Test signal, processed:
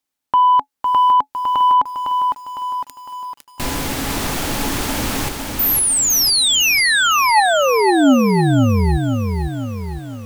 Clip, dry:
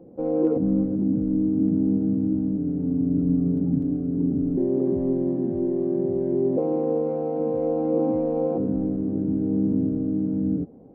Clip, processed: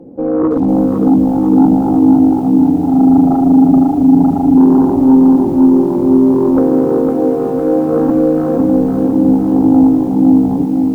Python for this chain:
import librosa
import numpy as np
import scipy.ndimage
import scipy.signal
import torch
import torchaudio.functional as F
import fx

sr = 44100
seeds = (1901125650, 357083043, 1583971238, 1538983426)

y = fx.small_body(x, sr, hz=(270.0, 850.0), ring_ms=90, db=10)
y = fx.fold_sine(y, sr, drive_db=7, ceiling_db=-6.0)
y = fx.echo_crushed(y, sr, ms=506, feedback_pct=55, bits=7, wet_db=-4.5)
y = y * librosa.db_to_amplitude(-2.0)